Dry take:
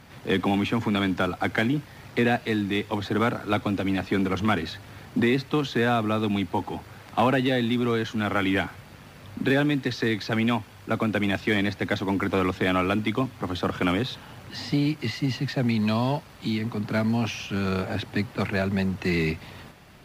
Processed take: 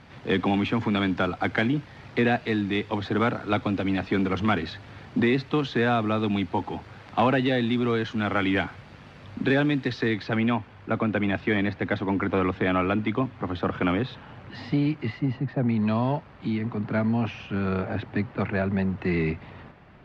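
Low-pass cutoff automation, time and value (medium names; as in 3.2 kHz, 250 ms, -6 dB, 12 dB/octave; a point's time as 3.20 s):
9.87 s 4.3 kHz
10.53 s 2.5 kHz
14.93 s 2.5 kHz
15.47 s 1.1 kHz
15.90 s 2.1 kHz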